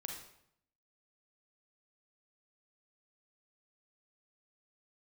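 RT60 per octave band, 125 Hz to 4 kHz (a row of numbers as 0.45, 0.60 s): 0.85, 0.80, 0.70, 0.70, 0.65, 0.60 s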